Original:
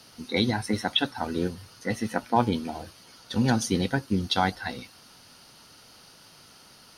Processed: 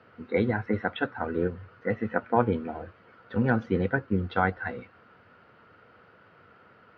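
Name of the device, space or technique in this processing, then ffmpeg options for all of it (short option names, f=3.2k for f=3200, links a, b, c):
bass cabinet: -af "highpass=82,equalizer=f=90:t=q:w=4:g=5,equalizer=f=150:t=q:w=4:g=-4,equalizer=f=270:t=q:w=4:g=-4,equalizer=f=470:t=q:w=4:g=6,equalizer=f=860:t=q:w=4:g=-5,equalizer=f=1.4k:t=q:w=4:g=5,lowpass=f=2.1k:w=0.5412,lowpass=f=2.1k:w=1.3066"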